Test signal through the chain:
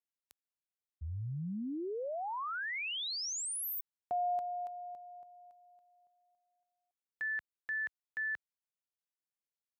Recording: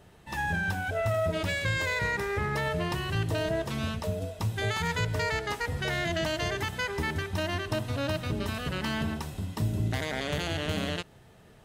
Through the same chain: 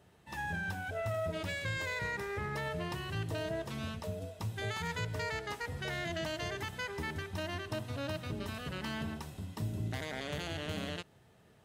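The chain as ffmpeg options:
ffmpeg -i in.wav -af "highpass=61,volume=-7.5dB" out.wav

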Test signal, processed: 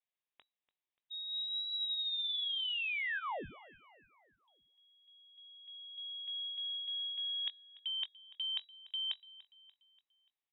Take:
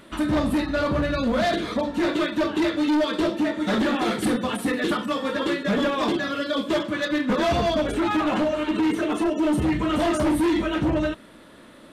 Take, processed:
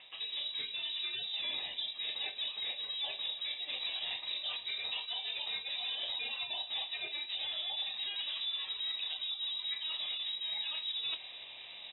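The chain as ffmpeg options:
ffmpeg -i in.wav -filter_complex "[0:a]highpass=280,bandreject=frequency=2700:width=5.1,areverse,acompressor=threshold=-37dB:ratio=8,areverse,asoftclip=type=tanh:threshold=-24dB,afreqshift=-230,asplit=2[link_01][link_02];[link_02]adelay=21,volume=-13dB[link_03];[link_01][link_03]amix=inputs=2:normalize=0,asplit=2[link_04][link_05];[link_05]aecho=0:1:291|582|873|1164:0.106|0.0519|0.0254|0.0125[link_06];[link_04][link_06]amix=inputs=2:normalize=0,lowpass=frequency=3300:width_type=q:width=0.5098,lowpass=frequency=3300:width_type=q:width=0.6013,lowpass=frequency=3300:width_type=q:width=0.9,lowpass=frequency=3300:width_type=q:width=2.563,afreqshift=-3900,volume=1dB" out.wav

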